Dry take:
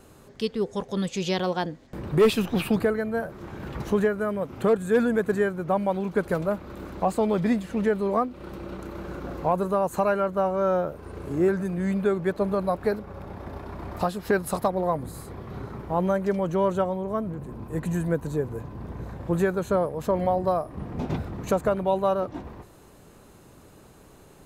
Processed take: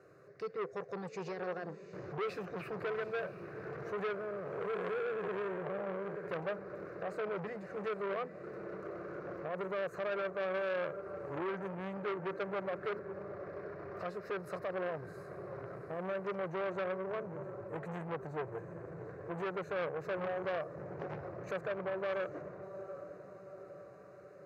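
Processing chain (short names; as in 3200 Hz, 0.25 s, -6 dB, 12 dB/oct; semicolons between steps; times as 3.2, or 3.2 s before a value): 4.14–6.28 time blur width 0.302 s; HPF 130 Hz 24 dB/oct; high shelf 6200 Hz +6.5 dB; limiter -19.5 dBFS, peak gain reduction 11.5 dB; air absorption 240 m; fixed phaser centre 880 Hz, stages 6; diffused feedback echo 0.759 s, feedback 56%, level -12 dB; core saturation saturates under 1300 Hz; gain -3 dB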